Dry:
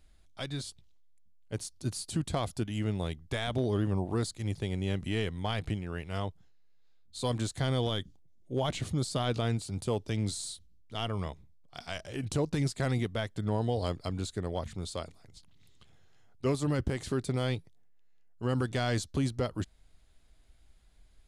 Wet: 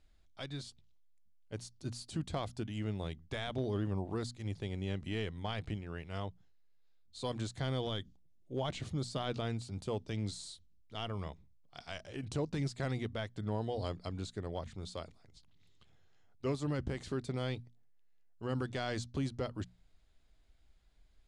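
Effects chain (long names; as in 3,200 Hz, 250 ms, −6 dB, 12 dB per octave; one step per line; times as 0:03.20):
low-pass filter 6,900 Hz 12 dB per octave
mains-hum notches 60/120/180/240 Hz
level −5.5 dB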